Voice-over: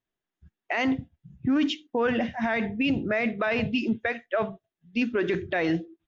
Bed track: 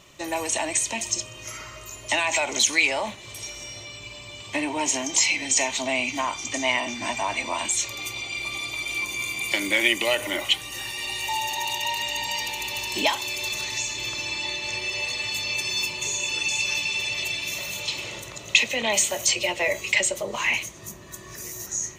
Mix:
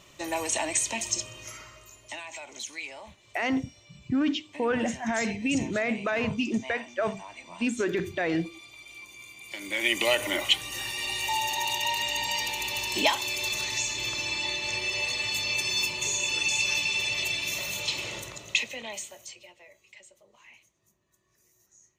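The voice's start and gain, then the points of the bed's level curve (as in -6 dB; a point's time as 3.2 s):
2.65 s, -2.0 dB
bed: 1.3 s -2.5 dB
2.28 s -17.5 dB
9.44 s -17.5 dB
10.01 s -1 dB
18.23 s -1 dB
19.7 s -30.5 dB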